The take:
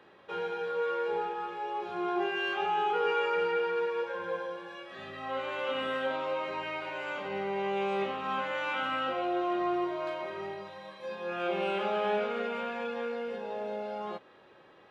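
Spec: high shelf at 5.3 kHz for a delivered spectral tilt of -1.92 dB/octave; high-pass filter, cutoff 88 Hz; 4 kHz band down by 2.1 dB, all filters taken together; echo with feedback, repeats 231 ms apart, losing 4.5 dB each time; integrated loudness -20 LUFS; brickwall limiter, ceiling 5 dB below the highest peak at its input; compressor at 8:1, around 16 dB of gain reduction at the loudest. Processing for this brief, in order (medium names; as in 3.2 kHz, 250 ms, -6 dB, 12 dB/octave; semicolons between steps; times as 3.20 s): high-pass 88 Hz; peaking EQ 4 kHz -6 dB; treble shelf 5.3 kHz +6.5 dB; compression 8:1, threshold -43 dBFS; peak limiter -39.5 dBFS; feedback delay 231 ms, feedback 60%, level -4.5 dB; trim +25.5 dB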